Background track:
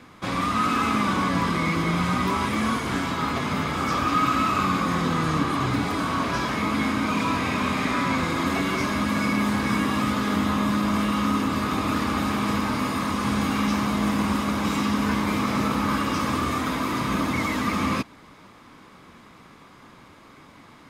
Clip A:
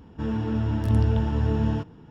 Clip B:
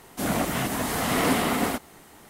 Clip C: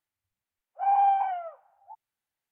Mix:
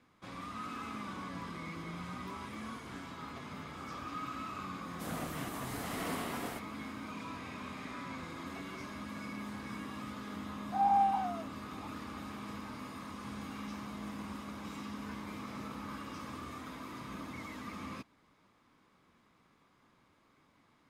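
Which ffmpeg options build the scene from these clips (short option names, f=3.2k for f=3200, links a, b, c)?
-filter_complex "[0:a]volume=-19.5dB[a];[3:a]lowpass=1.9k[b];[2:a]atrim=end=2.29,asetpts=PTS-STARTPTS,volume=-15.5dB,afade=t=in:d=0.004:c=hsin,afade=t=out:st=2.286:d=0.004:c=hsin,adelay=4820[c];[b]atrim=end=2.51,asetpts=PTS-STARTPTS,volume=-5.5dB,afade=t=in:d=0.004:c=hsin,afade=t=out:st=2.506:d=0.004:c=hsin,adelay=9930[d];[a][c][d]amix=inputs=3:normalize=0"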